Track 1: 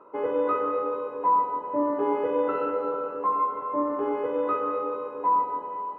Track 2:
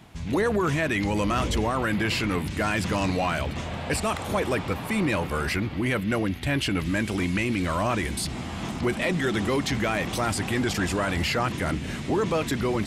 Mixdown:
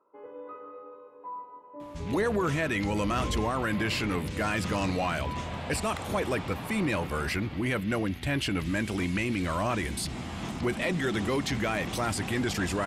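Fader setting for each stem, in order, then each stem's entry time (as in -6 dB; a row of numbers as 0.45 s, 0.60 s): -18.0 dB, -3.5 dB; 0.00 s, 1.80 s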